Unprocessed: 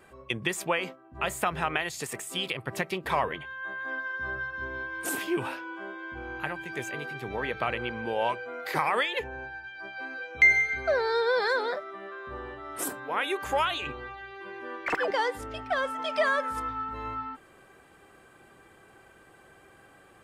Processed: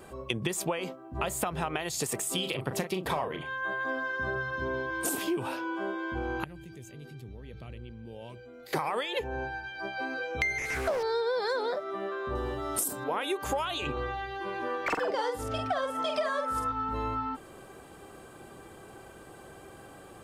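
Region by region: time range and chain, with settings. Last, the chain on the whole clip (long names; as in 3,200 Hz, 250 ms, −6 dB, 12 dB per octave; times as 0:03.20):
0:02.34–0:04.91: high-pass filter 60 Hz + double-tracking delay 38 ms −8 dB
0:06.44–0:08.73: guitar amp tone stack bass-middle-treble 10-0-1 + shaped tremolo triangle 1.8 Hz, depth 65% + envelope flattener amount 70%
0:10.58–0:11.03: linear delta modulator 64 kbit/s, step −42 dBFS + highs frequency-modulated by the lows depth 0.28 ms
0:12.35–0:13.04: bass and treble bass +4 dB, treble +11 dB + downward compressor 5 to 1, threshold −26 dBFS
0:13.92–0:16.72: parametric band 1,300 Hz +3 dB 0.42 octaves + double-tracking delay 47 ms −5 dB
whole clip: parametric band 1,900 Hz −9 dB 1.3 octaves; downward compressor 6 to 1, threshold −37 dBFS; level +9 dB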